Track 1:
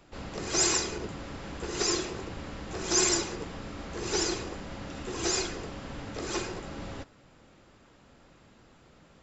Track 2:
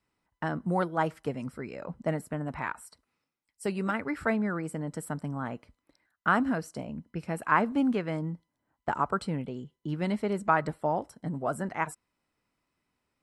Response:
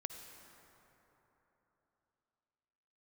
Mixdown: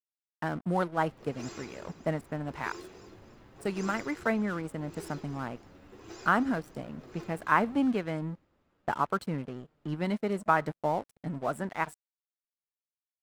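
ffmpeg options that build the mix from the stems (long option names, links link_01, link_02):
-filter_complex "[0:a]aemphasis=mode=reproduction:type=75fm,flanger=delay=6.3:depth=7.2:regen=39:speed=0.34:shape=triangular,acrusher=bits=7:mode=log:mix=0:aa=0.000001,adelay=850,volume=-11.5dB,asplit=2[link_01][link_02];[link_02]volume=-10.5dB[link_03];[1:a]aeval=exprs='sgn(val(0))*max(abs(val(0))-0.00562,0)':channel_layout=same,volume=0dB[link_04];[link_03]aecho=0:1:286|572|858|1144|1430:1|0.38|0.144|0.0549|0.0209[link_05];[link_01][link_04][link_05]amix=inputs=3:normalize=0"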